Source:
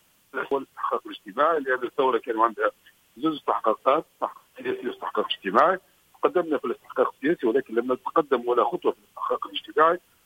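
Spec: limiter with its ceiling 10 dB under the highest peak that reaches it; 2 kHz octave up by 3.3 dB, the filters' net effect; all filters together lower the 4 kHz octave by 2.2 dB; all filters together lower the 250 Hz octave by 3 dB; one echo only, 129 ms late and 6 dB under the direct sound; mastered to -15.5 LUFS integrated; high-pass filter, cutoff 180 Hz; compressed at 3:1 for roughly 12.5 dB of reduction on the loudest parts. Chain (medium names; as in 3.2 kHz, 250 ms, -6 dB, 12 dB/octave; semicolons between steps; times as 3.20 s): high-pass 180 Hz; peaking EQ 250 Hz -4 dB; peaking EQ 2 kHz +6 dB; peaking EQ 4 kHz -7.5 dB; compression 3:1, threshold -31 dBFS; peak limiter -25.5 dBFS; delay 129 ms -6 dB; trim +21.5 dB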